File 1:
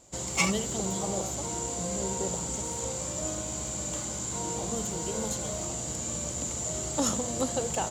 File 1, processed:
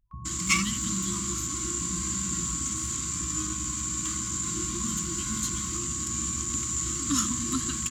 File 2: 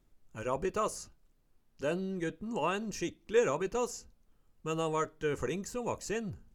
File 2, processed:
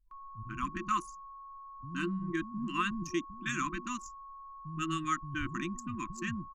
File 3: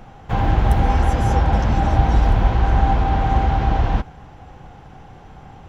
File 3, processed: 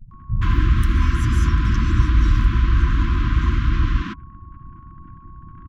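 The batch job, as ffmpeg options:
-filter_complex "[0:a]anlmdn=1,aeval=exprs='val(0)+0.00316*sin(2*PI*1100*n/s)':c=same,asplit=2[a][b];[b]acompressor=threshold=-24dB:ratio=10,volume=-1dB[c];[a][c]amix=inputs=2:normalize=0,acrossover=split=170[d][e];[e]adelay=120[f];[d][f]amix=inputs=2:normalize=0,afftfilt=real='re*(1-between(b*sr/4096,360,1000))':imag='im*(1-between(b*sr/4096,360,1000))':win_size=4096:overlap=0.75,volume=-1.5dB"

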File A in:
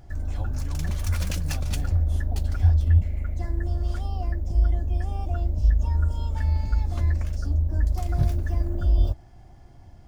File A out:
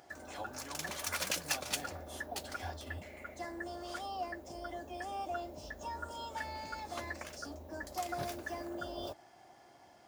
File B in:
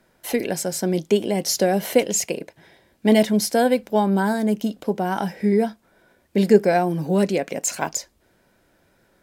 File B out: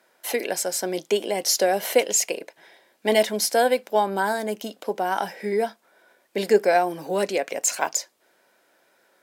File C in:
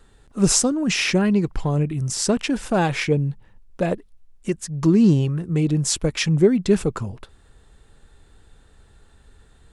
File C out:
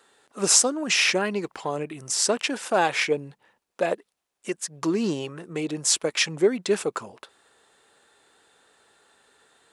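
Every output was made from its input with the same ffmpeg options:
-af "highpass=480,volume=1.5dB"

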